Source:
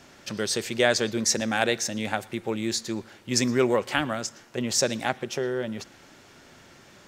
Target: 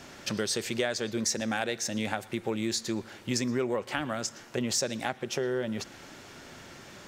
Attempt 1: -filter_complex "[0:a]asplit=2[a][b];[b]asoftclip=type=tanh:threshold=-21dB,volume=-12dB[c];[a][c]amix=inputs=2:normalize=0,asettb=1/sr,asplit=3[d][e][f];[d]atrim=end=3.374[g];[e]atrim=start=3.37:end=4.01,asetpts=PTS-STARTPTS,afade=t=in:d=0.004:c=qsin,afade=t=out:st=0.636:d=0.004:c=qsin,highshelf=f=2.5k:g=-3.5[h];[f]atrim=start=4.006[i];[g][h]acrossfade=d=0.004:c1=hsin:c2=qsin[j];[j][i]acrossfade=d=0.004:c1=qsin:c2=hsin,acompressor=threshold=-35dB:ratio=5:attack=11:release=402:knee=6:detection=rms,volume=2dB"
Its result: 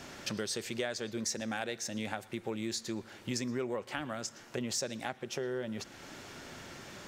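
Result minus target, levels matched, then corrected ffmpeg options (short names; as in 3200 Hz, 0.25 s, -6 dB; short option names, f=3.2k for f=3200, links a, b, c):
compressor: peak gain reduction +6 dB
-filter_complex "[0:a]asplit=2[a][b];[b]asoftclip=type=tanh:threshold=-21dB,volume=-12dB[c];[a][c]amix=inputs=2:normalize=0,asettb=1/sr,asplit=3[d][e][f];[d]atrim=end=3.374[g];[e]atrim=start=3.37:end=4.01,asetpts=PTS-STARTPTS,afade=t=in:d=0.004:c=qsin,afade=t=out:st=0.636:d=0.004:c=qsin,highshelf=f=2.5k:g=-3.5[h];[f]atrim=start=4.006[i];[g][h]acrossfade=d=0.004:c1=hsin:c2=qsin[j];[j][i]acrossfade=d=0.004:c1=qsin:c2=hsin,acompressor=threshold=-27.5dB:ratio=5:attack=11:release=402:knee=6:detection=rms,volume=2dB"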